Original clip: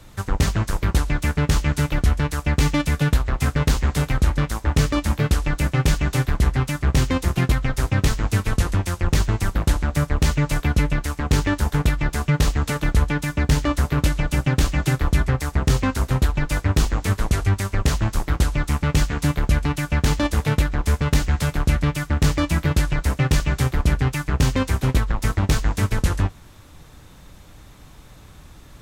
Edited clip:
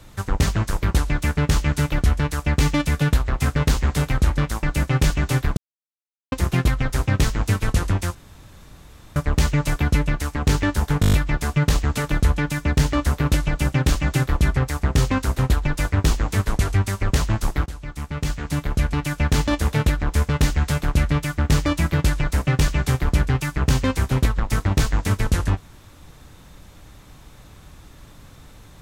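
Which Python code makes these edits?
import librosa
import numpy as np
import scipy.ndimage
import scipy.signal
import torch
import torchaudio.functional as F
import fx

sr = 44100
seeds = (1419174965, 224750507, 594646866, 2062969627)

y = fx.edit(x, sr, fx.cut(start_s=4.63, length_s=0.84),
    fx.silence(start_s=6.41, length_s=0.75),
    fx.room_tone_fill(start_s=8.99, length_s=1.01),
    fx.stutter(start_s=11.85, slice_s=0.02, count=7),
    fx.fade_in_from(start_s=18.38, length_s=1.51, floor_db=-16.0), tone=tone)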